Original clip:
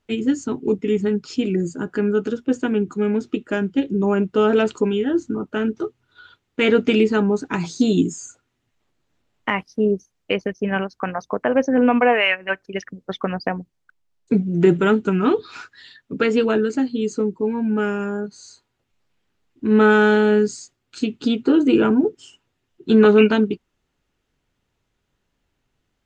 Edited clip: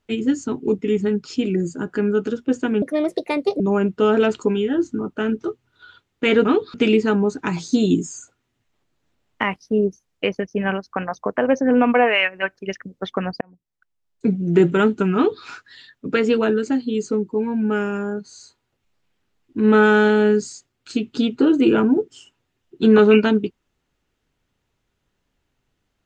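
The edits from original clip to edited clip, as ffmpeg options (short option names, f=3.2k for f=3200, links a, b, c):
-filter_complex "[0:a]asplit=6[a][b][c][d][e][f];[a]atrim=end=2.824[g];[b]atrim=start=2.82:end=3.96,asetpts=PTS-STARTPTS,asetrate=64386,aresample=44100,atrim=end_sample=34434,asetpts=PTS-STARTPTS[h];[c]atrim=start=3.956:end=6.812[i];[d]atrim=start=15.218:end=15.512[j];[e]atrim=start=6.808:end=13.48,asetpts=PTS-STARTPTS,afade=t=out:st=6.668:d=0.004:c=hsin[k];[f]atrim=start=13.48,asetpts=PTS-STARTPTS,afade=t=in:d=1.03[l];[g][h]acrossfade=d=0.004:c1=hsin:c2=hsin[m];[m][i]acrossfade=d=0.004:c1=hsin:c2=hsin[n];[n][j]acrossfade=d=0.004:c1=hsin:c2=hsin[o];[k][l]concat=n=2:v=0:a=1[p];[o][p]acrossfade=d=0.004:c1=hsin:c2=hsin"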